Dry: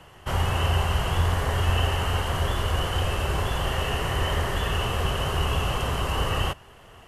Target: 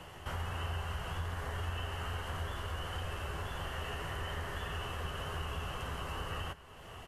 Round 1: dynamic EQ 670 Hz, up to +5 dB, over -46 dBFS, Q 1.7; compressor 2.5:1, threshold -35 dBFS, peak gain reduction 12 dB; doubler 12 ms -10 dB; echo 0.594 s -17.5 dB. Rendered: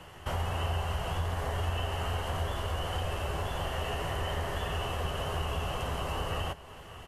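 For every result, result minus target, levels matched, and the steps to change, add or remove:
compressor: peak gain reduction -6 dB; 2000 Hz band -3.0 dB
change: compressor 2.5:1, threshold -45 dBFS, peak gain reduction 18 dB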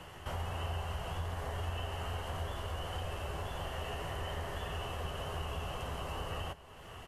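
2000 Hz band -3.0 dB
change: dynamic EQ 1500 Hz, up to +5 dB, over -46 dBFS, Q 1.7

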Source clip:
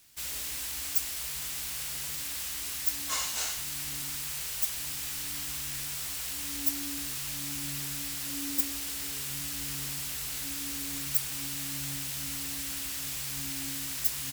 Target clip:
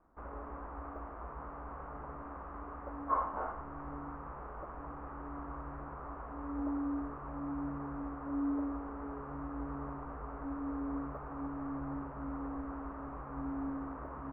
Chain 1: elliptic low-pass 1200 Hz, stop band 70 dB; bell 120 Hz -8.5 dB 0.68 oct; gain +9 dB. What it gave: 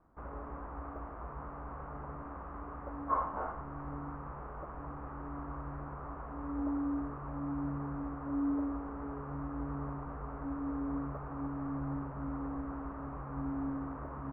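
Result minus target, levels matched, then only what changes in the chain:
125 Hz band +3.5 dB
change: bell 120 Hz -20 dB 0.68 oct

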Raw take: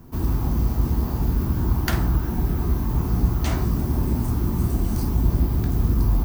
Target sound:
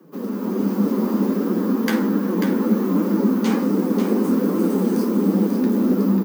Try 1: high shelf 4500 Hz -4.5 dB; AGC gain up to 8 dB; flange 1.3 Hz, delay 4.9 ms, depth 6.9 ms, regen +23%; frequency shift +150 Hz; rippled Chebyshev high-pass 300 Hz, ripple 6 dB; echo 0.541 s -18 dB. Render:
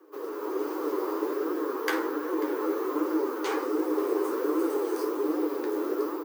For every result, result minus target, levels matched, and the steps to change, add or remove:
echo-to-direct -11 dB; 250 Hz band -3.5 dB
change: echo 0.541 s -7 dB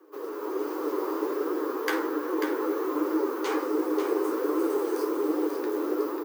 250 Hz band -3.5 dB
remove: rippled Chebyshev high-pass 300 Hz, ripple 6 dB

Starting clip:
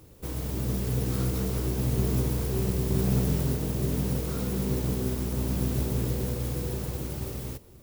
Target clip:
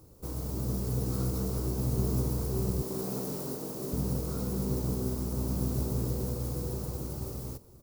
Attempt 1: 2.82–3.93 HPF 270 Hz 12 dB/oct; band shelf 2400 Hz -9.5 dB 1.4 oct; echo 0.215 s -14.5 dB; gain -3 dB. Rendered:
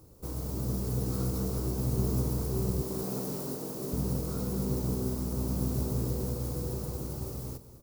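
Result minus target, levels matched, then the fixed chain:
echo-to-direct +11.5 dB
2.82–3.93 HPF 270 Hz 12 dB/oct; band shelf 2400 Hz -9.5 dB 1.4 oct; echo 0.215 s -26 dB; gain -3 dB

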